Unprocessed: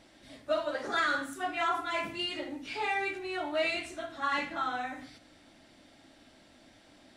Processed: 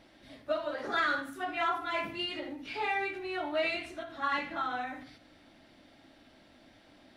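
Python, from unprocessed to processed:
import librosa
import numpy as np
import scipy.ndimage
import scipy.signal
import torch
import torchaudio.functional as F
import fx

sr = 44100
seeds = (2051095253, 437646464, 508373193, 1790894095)

y = fx.peak_eq(x, sr, hz=7700.0, db=-10.5, octaves=0.83)
y = fx.end_taper(y, sr, db_per_s=110.0)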